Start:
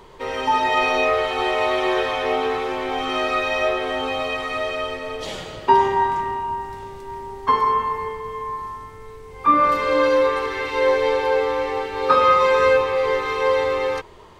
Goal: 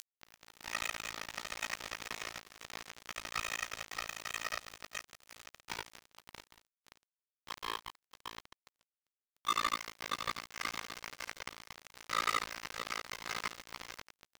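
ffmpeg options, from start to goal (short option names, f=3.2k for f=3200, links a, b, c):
-filter_complex "[0:a]asoftclip=type=tanh:threshold=-20.5dB,highpass=370,equalizer=f=390:t=q:w=4:g=-8,equalizer=f=550:t=q:w=4:g=-7,equalizer=f=840:t=q:w=4:g=-3,equalizer=f=1.2k:t=q:w=4:g=4,equalizer=f=2k:t=q:w=4:g=5,equalizer=f=3.1k:t=q:w=4:g=-8,lowpass=f=3.4k:w=0.5412,lowpass=f=3.4k:w=1.3066,acrossover=split=1300[a][b];[b]aeval=exprs='sgn(val(0))*max(abs(val(0))-0.00141,0)':c=same[c];[a][c]amix=inputs=2:normalize=0,acompressor=mode=upward:threshold=-26dB:ratio=2.5,aderivative,tremolo=f=56:d=0.857,flanger=delay=18:depth=3.9:speed=0.91,aecho=1:1:630|1166|1621|2008|2336:0.631|0.398|0.251|0.158|0.1,acrusher=bits=5:mix=0:aa=0.5,volume=9dB"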